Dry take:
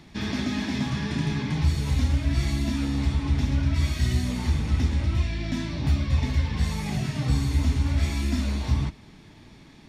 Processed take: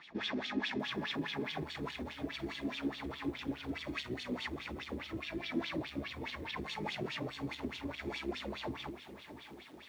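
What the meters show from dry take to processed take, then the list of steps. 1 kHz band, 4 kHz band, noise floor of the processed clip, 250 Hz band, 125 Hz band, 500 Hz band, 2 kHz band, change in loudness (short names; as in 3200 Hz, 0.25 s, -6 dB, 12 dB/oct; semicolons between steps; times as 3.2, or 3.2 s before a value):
-5.5 dB, -5.5 dB, -54 dBFS, -11.0 dB, -24.5 dB, -3.0 dB, -4.5 dB, -14.0 dB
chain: limiter -22 dBFS, peak gain reduction 10.5 dB; soft clip -25.5 dBFS, distortion -18 dB; wah 4.8 Hz 330–3500 Hz, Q 4.4; lo-fi delay 0.647 s, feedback 55%, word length 11-bit, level -13 dB; gain +9.5 dB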